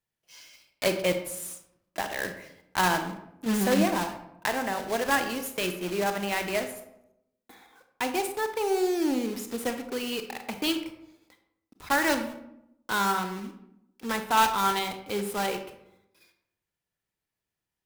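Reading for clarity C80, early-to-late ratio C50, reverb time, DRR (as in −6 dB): 11.5 dB, 9.0 dB, 0.80 s, 7.0 dB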